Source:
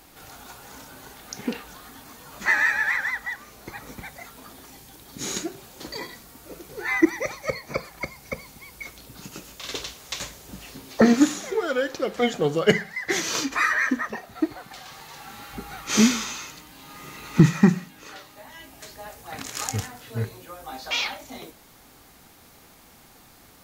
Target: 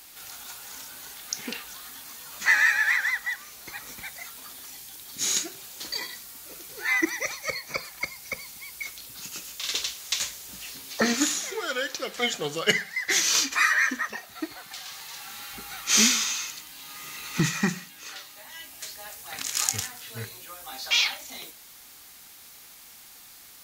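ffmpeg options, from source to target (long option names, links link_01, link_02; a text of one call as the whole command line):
ffmpeg -i in.wav -af "tiltshelf=frequency=1300:gain=-9,aeval=exprs='1.26*(cos(1*acos(clip(val(0)/1.26,-1,1)))-cos(1*PI/2))+0.0355*(cos(5*acos(clip(val(0)/1.26,-1,1)))-cos(5*PI/2))':channel_layout=same,volume=-3dB" out.wav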